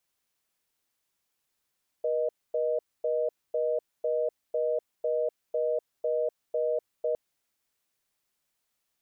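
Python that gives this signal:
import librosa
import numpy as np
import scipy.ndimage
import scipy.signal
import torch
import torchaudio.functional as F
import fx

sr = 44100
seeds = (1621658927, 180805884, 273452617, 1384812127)

y = fx.call_progress(sr, length_s=5.11, kind='reorder tone', level_db=-27.5)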